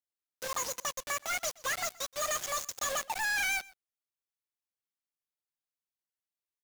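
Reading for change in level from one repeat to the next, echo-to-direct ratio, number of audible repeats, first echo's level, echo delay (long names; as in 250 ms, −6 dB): repeats not evenly spaced, −22.5 dB, 1, −22.5 dB, 124 ms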